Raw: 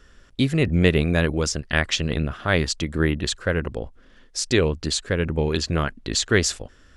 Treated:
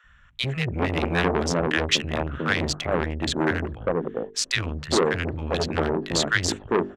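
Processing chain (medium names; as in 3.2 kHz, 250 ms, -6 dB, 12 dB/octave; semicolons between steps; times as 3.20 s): local Wiener filter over 9 samples; high-pass 90 Hz 6 dB/octave; treble shelf 8.2 kHz -8.5 dB; hum notches 50/100/150/200/250/300/350/400/450 Hz; wow and flutter 18 cents; three bands offset in time highs, lows, mids 40/400 ms, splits 160/930 Hz; loudness maximiser +10.5 dB; transformer saturation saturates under 980 Hz; trim -5.5 dB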